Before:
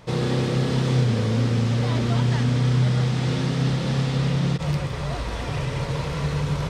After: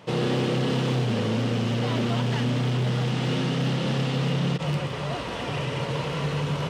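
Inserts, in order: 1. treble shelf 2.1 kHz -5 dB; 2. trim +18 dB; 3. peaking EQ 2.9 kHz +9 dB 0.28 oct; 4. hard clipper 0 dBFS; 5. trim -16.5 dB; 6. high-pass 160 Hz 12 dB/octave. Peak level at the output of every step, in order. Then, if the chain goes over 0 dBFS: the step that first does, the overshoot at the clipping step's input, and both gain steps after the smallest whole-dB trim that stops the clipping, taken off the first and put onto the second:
-9.5 dBFS, +8.5 dBFS, +8.5 dBFS, 0.0 dBFS, -16.5 dBFS, -13.0 dBFS; step 2, 8.5 dB; step 2 +9 dB, step 5 -7.5 dB

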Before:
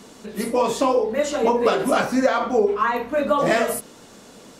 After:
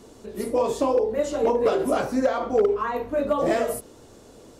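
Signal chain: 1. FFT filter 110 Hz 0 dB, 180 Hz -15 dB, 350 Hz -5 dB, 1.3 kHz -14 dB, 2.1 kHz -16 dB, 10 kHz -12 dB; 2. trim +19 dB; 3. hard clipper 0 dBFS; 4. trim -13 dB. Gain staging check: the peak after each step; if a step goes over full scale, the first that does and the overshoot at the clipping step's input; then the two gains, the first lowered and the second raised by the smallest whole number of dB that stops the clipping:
-14.0 dBFS, +5.0 dBFS, 0.0 dBFS, -13.0 dBFS; step 2, 5.0 dB; step 2 +14 dB, step 4 -8 dB

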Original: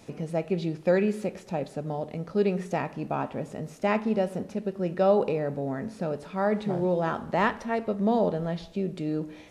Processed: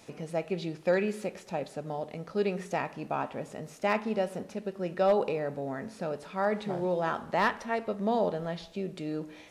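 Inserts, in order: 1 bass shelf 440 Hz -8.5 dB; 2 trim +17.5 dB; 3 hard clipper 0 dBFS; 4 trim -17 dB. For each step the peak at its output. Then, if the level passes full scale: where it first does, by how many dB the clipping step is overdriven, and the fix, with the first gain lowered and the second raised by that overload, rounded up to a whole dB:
-13.0 dBFS, +4.5 dBFS, 0.0 dBFS, -17.0 dBFS; step 2, 4.5 dB; step 2 +12.5 dB, step 4 -12 dB

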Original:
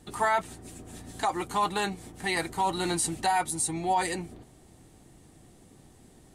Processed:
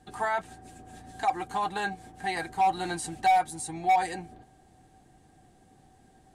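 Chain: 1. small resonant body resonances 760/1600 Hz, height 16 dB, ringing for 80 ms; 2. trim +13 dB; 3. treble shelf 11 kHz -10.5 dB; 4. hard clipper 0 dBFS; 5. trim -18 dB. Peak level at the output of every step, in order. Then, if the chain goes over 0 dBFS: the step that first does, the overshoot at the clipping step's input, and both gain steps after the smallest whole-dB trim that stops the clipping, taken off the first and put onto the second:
-4.0 dBFS, +9.0 dBFS, +9.0 dBFS, 0.0 dBFS, -18.0 dBFS; step 2, 9.0 dB; step 2 +4 dB, step 5 -9 dB

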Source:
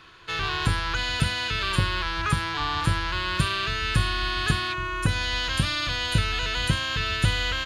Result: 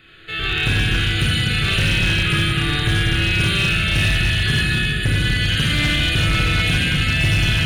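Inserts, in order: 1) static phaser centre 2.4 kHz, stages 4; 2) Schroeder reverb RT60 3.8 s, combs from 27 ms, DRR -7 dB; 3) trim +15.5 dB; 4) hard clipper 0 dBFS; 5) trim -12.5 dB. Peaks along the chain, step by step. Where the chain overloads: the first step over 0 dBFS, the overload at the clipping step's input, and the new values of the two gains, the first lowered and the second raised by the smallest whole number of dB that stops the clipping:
-9.5 dBFS, -6.0 dBFS, +9.5 dBFS, 0.0 dBFS, -12.5 dBFS; step 3, 9.5 dB; step 3 +5.5 dB, step 5 -2.5 dB

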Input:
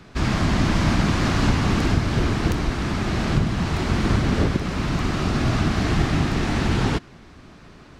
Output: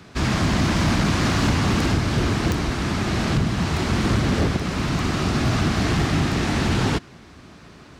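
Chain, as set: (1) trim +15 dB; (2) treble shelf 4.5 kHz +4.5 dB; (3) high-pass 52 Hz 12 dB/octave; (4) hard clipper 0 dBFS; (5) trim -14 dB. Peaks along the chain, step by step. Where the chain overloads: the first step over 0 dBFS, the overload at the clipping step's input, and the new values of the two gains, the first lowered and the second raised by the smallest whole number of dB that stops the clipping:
+8.0 dBFS, +8.5 dBFS, +8.5 dBFS, 0.0 dBFS, -14.0 dBFS; step 1, 8.5 dB; step 1 +6 dB, step 5 -5 dB

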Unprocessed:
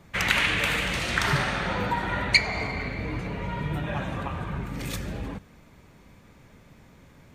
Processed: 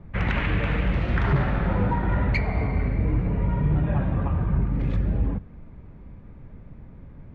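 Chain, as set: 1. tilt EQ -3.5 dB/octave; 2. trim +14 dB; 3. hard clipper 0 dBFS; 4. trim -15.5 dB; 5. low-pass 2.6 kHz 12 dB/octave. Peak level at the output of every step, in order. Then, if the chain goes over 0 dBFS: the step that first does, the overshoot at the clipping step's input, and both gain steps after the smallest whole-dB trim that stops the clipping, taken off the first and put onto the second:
-5.0 dBFS, +9.0 dBFS, 0.0 dBFS, -15.5 dBFS, -15.0 dBFS; step 2, 9.0 dB; step 2 +5 dB, step 4 -6.5 dB

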